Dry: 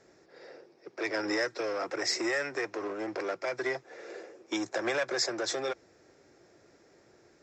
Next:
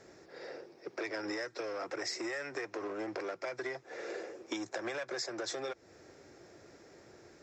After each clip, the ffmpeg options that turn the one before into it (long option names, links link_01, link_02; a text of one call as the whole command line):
ffmpeg -i in.wav -af "equalizer=frequency=83:width_type=o:width=0.77:gain=3,acompressor=threshold=-40dB:ratio=6,volume=4dB" out.wav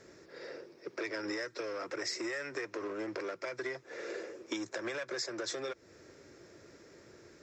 ffmpeg -i in.wav -af "equalizer=frequency=760:width_type=o:width=0.33:gain=-10,volume=1dB" out.wav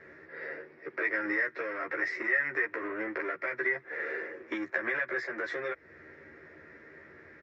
ffmpeg -i in.wav -filter_complex "[0:a]lowpass=frequency=1900:width_type=q:width=4.6,asplit=2[link_01][link_02];[link_02]adelay=13,volume=-2dB[link_03];[link_01][link_03]amix=inputs=2:normalize=0,volume=-1dB" out.wav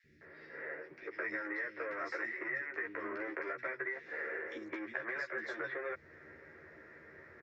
ffmpeg -i in.wav -filter_complex "[0:a]acompressor=threshold=-32dB:ratio=6,acrossover=split=280|2800[link_01][link_02][link_03];[link_01]adelay=40[link_04];[link_02]adelay=210[link_05];[link_04][link_05][link_03]amix=inputs=3:normalize=0,volume=-2dB" out.wav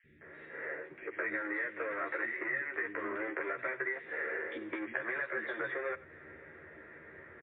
ffmpeg -i in.wav -filter_complex "[0:a]asplit=2[link_01][link_02];[link_02]adelay=93.29,volume=-18dB,highshelf=frequency=4000:gain=-2.1[link_03];[link_01][link_03]amix=inputs=2:normalize=0,volume=3.5dB" -ar 8000 -c:a libmp3lame -b:a 24k out.mp3